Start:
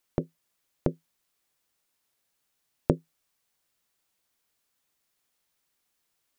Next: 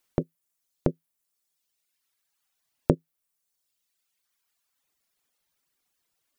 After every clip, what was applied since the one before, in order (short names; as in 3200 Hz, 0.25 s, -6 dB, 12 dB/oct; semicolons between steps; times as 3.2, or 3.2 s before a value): reverb removal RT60 1.6 s; gain +2.5 dB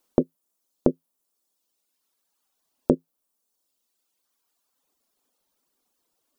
graphic EQ 125/250/500/1000/2000 Hz -8/+9/+5/+4/-7 dB; limiter -4 dBFS, peak gain reduction 6.5 dB; gain +2 dB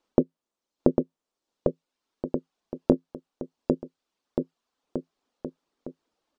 air absorption 130 m; on a send: bouncing-ball echo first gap 0.8 s, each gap 0.85×, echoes 5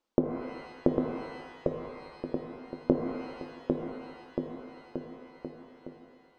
shimmer reverb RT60 1.5 s, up +12 st, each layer -8 dB, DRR 4 dB; gain -5.5 dB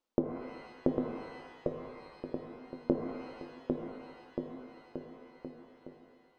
flange 1.1 Hz, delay 7.5 ms, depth 3.1 ms, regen +79%